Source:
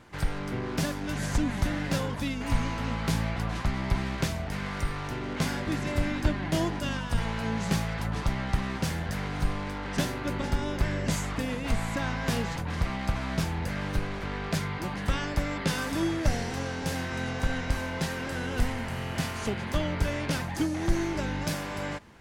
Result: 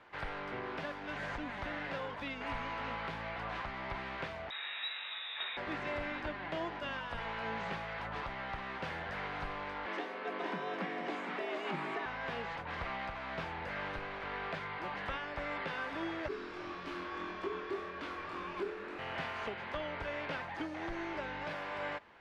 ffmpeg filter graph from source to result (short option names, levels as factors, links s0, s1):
-filter_complex "[0:a]asettb=1/sr,asplit=3[s0][s1][s2];[s0]atrim=end=4.504[s3];[s1]atrim=start=4.5:end=5.57,asetpts=PTS-STARTPTS,afade=t=in:d=0.004:c=qsin,afade=t=out:st=1.066:d=0.004:c=qsin,equalizer=f=830:t=o:w=0.59:g=-14,lowpass=f=3300:t=q:w=0.5098,lowpass=f=3300:t=q:w=0.6013,lowpass=f=3300:t=q:w=0.9,lowpass=f=3300:t=q:w=2.563,afreqshift=-3900[s4];[s2]atrim=start=5.566[s5];[s3][s4]acrossfade=d=0.004:c1=hsin:c2=qsin[s6];[s6][s5]acrossfade=d=0.004:c1=qsin:c2=hsin,asettb=1/sr,asplit=3[s7][s8][s9];[s7]atrim=end=9.864[s10];[s8]atrim=start=9.86:end=12.06,asetpts=PTS-STARTPTS,afade=t=in:d=0.004:c=qsin,afade=t=out:st=2.196:d=0.004:c=qsin,afreqshift=140,aecho=1:1:461:0.422,atrim=end_sample=97020[s11];[s9]atrim=start=12.056[s12];[s10][s11]acrossfade=d=0.004:c1=hsin:c2=qsin[s13];[s13][s12]acrossfade=d=0.004:c1=qsin:c2=hsin,asettb=1/sr,asplit=3[s14][s15][s16];[s14]atrim=end=16.284[s17];[s15]atrim=start=16.28:end=18.99,asetpts=PTS-STARTPTS,afade=t=in:d=0.004:c=qsin,afade=t=out:st=2.706:d=0.004:c=qsin,flanger=delay=19:depth=6.3:speed=1.8,afreqshift=-440[s18];[s16]atrim=start=18.986[s19];[s17][s18]acrossfade=d=0.004:c1=hsin:c2=qsin[s20];[s20][s19]acrossfade=d=0.004:c1=qsin:c2=hsin,acrossover=split=3600[s21][s22];[s22]acompressor=threshold=0.00562:ratio=4:attack=1:release=60[s23];[s21][s23]amix=inputs=2:normalize=0,acrossover=split=420 3800:gain=0.158 1 0.0631[s24][s25][s26];[s24][s25][s26]amix=inputs=3:normalize=0,alimiter=level_in=1.33:limit=0.0631:level=0:latency=1:release=461,volume=0.75,volume=0.841"